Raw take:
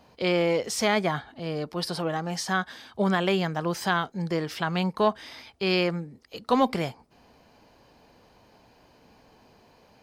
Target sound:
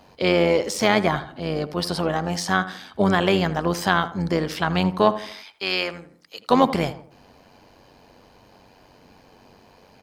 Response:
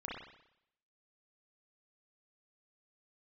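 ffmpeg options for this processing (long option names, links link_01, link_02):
-filter_complex "[0:a]asettb=1/sr,asplit=3[link_01][link_02][link_03];[link_01]atrim=end=5.324[link_04];[link_02]atrim=start=5.32:end=6.5,asetpts=PTS-STARTPTS,afade=type=in:duration=0.004:curve=qsin,afade=type=out:start_time=1.176:duration=0.004:curve=qsin,highpass=frequency=1200:poles=1[link_05];[link_03]atrim=start=6.496[link_06];[link_04][link_05]acrossfade=duration=0.004:curve1=hsin:curve2=qsin[link_07];[link_07][link_06]acrossfade=duration=0.004:curve1=qsin:curve2=hsin,deesser=0.6,tremolo=f=94:d=0.571,asplit=2[link_08][link_09];[link_09]adelay=81,lowpass=frequency=1700:poles=1,volume=-13dB,asplit=2[link_10][link_11];[link_11]adelay=81,lowpass=frequency=1700:poles=1,volume=0.41,asplit=2[link_12][link_13];[link_13]adelay=81,lowpass=frequency=1700:poles=1,volume=0.41,asplit=2[link_14][link_15];[link_15]adelay=81,lowpass=frequency=1700:poles=1,volume=0.41[link_16];[link_08][link_10][link_12][link_14][link_16]amix=inputs=5:normalize=0,volume=7.5dB"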